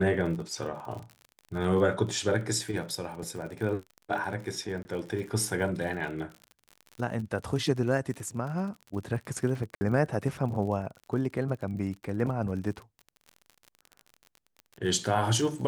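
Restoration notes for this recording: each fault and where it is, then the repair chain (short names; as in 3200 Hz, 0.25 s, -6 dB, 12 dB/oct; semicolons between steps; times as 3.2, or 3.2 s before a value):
crackle 46/s -37 dBFS
4.83–4.85 gap 20 ms
9.75–9.81 gap 60 ms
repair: de-click; interpolate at 4.83, 20 ms; interpolate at 9.75, 60 ms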